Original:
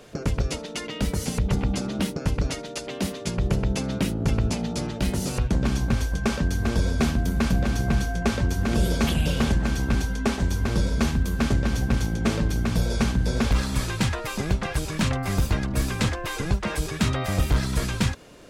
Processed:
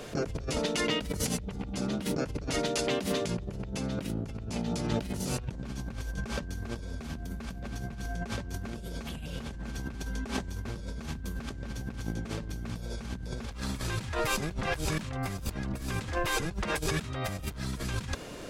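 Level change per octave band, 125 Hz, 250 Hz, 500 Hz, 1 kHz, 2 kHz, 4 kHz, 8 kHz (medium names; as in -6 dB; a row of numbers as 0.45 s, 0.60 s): -11.0 dB, -9.5 dB, -4.5 dB, -5.5 dB, -6.0 dB, -5.0 dB, -5.0 dB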